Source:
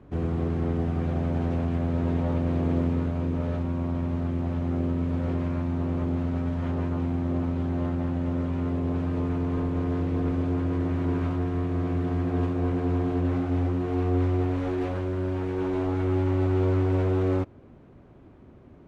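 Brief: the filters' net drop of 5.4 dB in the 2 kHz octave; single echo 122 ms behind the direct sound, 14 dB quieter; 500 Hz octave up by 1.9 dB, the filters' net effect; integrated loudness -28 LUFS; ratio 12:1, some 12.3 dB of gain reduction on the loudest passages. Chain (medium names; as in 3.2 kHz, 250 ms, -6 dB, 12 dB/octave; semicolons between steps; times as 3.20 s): peaking EQ 500 Hz +3 dB; peaking EQ 2 kHz -7.5 dB; compression 12:1, threshold -32 dBFS; delay 122 ms -14 dB; trim +8.5 dB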